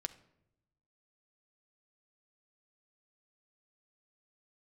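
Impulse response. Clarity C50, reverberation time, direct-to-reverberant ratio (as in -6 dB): 15.5 dB, 0.80 s, 9.0 dB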